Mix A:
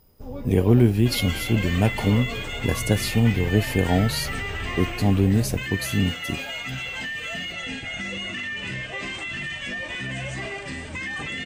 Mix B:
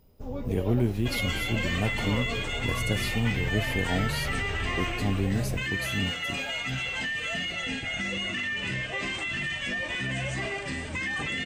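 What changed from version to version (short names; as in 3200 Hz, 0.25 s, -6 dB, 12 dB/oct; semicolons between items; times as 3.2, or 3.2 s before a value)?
speech -8.5 dB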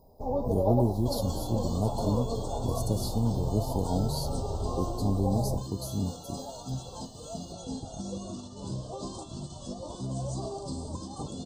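first sound: add bell 740 Hz +14.5 dB 1.3 oct; master: add elliptic band-stop 1000–4300 Hz, stop band 70 dB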